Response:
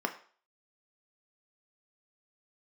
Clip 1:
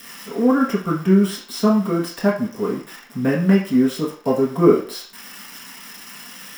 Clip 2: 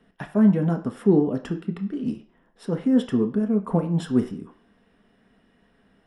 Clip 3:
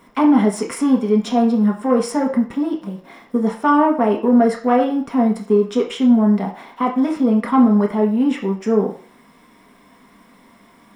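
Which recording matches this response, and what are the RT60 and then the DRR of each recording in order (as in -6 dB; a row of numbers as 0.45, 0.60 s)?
2; 0.45, 0.45, 0.45 s; -6.5, 4.5, -0.5 dB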